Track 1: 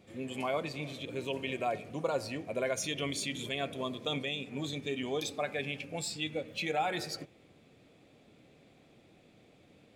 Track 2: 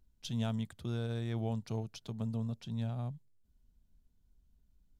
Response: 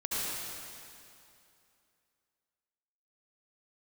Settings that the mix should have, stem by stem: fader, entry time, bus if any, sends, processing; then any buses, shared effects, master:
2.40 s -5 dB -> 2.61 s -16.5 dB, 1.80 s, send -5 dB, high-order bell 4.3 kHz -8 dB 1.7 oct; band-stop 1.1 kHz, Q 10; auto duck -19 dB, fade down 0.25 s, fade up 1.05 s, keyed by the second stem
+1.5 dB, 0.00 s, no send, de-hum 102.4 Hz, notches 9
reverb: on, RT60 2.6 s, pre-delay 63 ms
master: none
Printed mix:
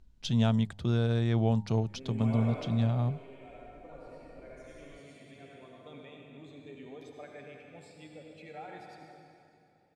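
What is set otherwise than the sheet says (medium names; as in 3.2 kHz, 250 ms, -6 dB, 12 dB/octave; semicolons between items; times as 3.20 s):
stem 2 +1.5 dB -> +9.0 dB; master: extra distance through air 71 m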